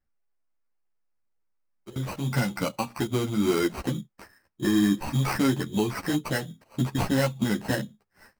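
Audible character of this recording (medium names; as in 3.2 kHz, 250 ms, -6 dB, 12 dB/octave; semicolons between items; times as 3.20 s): aliases and images of a low sample rate 3.5 kHz, jitter 0%; a shimmering, thickened sound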